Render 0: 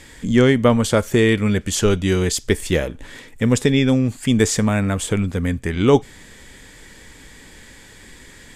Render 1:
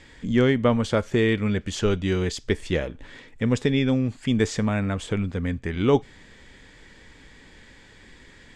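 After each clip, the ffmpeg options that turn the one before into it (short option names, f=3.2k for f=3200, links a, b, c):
-af "lowpass=4.8k,volume=-5.5dB"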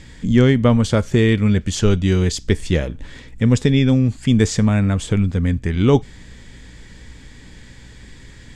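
-af "aeval=exprs='val(0)+0.00224*(sin(2*PI*60*n/s)+sin(2*PI*2*60*n/s)/2+sin(2*PI*3*60*n/s)/3+sin(2*PI*4*60*n/s)/4+sin(2*PI*5*60*n/s)/5)':c=same,bass=f=250:g=8,treble=f=4k:g=7,volume=2.5dB"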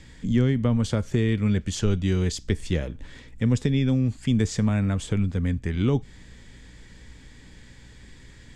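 -filter_complex "[0:a]acrossover=split=270[a][b];[b]acompressor=threshold=-20dB:ratio=6[c];[a][c]amix=inputs=2:normalize=0,volume=-6.5dB"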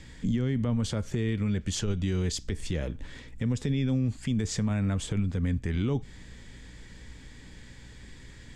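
-af "alimiter=limit=-19.5dB:level=0:latency=1:release=77"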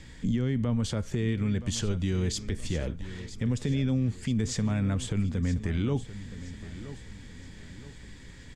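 -af "aecho=1:1:972|1944|2916|3888:0.2|0.0838|0.0352|0.0148"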